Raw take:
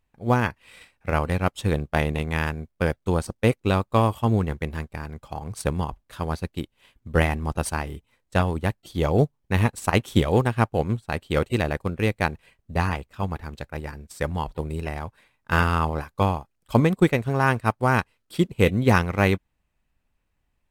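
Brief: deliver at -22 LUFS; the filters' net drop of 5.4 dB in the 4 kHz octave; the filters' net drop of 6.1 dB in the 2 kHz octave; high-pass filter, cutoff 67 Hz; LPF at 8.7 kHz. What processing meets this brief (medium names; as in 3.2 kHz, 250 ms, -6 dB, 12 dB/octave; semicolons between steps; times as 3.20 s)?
high-pass 67 Hz; low-pass 8.7 kHz; peaking EQ 2 kHz -7.5 dB; peaking EQ 4 kHz -4 dB; trim +3.5 dB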